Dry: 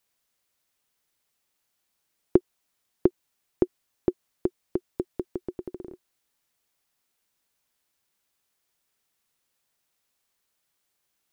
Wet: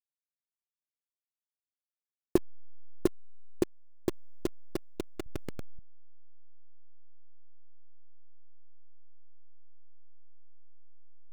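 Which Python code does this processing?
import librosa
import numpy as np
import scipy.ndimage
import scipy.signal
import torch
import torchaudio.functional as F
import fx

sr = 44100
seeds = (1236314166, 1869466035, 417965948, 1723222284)

y = fx.delta_hold(x, sr, step_db=-22.0)
y = fx.low_shelf(y, sr, hz=150.0, db=7.5, at=(5.26, 5.79))
y = y * librosa.db_to_amplitude(-5.5)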